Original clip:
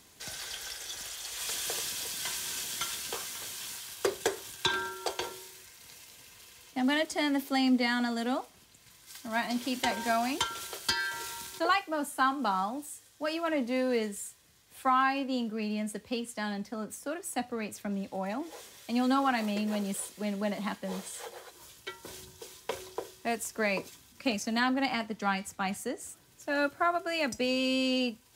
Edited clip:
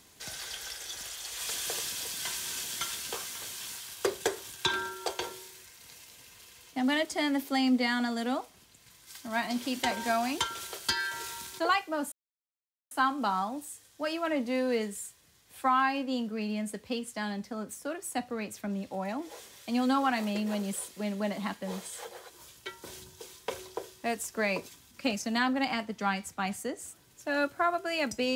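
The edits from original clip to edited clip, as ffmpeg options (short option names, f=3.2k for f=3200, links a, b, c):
-filter_complex "[0:a]asplit=2[a][b];[a]atrim=end=12.12,asetpts=PTS-STARTPTS,afade=t=out:st=12.116:d=0.004:c=hsin,apad=pad_dur=0.79[c];[b]atrim=start=12.12,asetpts=PTS-STARTPTS,afade=t=in:d=0.004:c=hsin[d];[c][d]concat=n=2:v=0:a=1"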